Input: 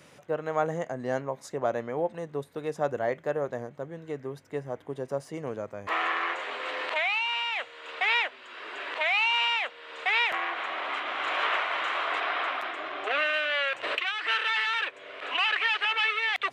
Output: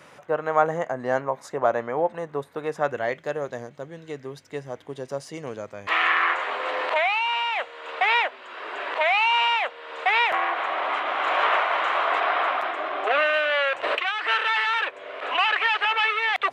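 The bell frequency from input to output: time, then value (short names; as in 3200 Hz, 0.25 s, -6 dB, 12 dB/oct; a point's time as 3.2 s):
bell +9.5 dB 2.2 oct
2.65 s 1100 Hz
3.25 s 4700 Hz
5.67 s 4700 Hz
6.63 s 740 Hz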